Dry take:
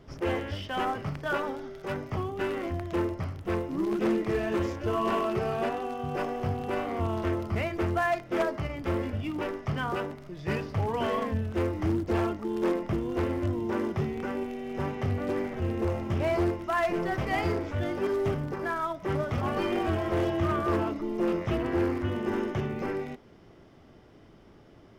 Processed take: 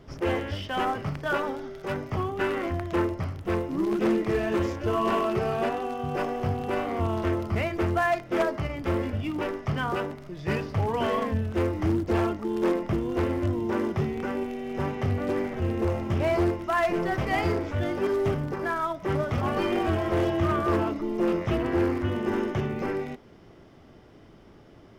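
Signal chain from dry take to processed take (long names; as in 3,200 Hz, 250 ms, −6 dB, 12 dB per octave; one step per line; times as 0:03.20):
0:02.18–0:03.06: dynamic equaliser 1,400 Hz, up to +4 dB, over −43 dBFS, Q 0.85
level +2.5 dB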